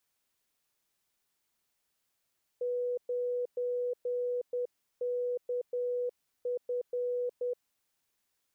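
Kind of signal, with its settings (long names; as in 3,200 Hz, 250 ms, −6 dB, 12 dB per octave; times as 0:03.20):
Morse code "9KF" 10 words per minute 491 Hz −29.5 dBFS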